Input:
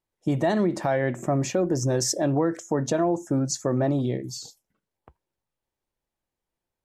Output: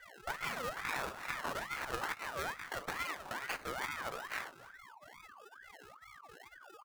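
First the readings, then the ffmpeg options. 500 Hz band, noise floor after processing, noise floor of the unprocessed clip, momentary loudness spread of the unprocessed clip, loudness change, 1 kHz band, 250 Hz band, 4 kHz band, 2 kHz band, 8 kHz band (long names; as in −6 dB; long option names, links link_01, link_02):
−20.5 dB, −58 dBFS, below −85 dBFS, 6 LU, −14.5 dB, −7.5 dB, −28.0 dB, −8.5 dB, −0.5 dB, −18.5 dB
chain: -af "aeval=exprs='if(lt(val(0),0),0.251*val(0),val(0))':channel_layout=same,highpass=210,agate=range=-33dB:threshold=-39dB:ratio=3:detection=peak,aemphasis=mode=production:type=75kf,aeval=exprs='val(0)+0.00126*sin(2*PI*1700*n/s)':channel_layout=same,aecho=1:1:2.5:0.82,acompressor=threshold=-36dB:ratio=6,equalizer=frequency=2400:width=1.2:gain=10,flanger=delay=15:depth=6.1:speed=2,acrusher=samples=29:mix=1:aa=0.000001:lfo=1:lforange=17.4:lforate=1.6,aecho=1:1:284:0.0891,aeval=exprs='val(0)*sin(2*PI*1300*n/s+1300*0.35/2.3*sin(2*PI*2.3*n/s))':channel_layout=same,volume=3dB"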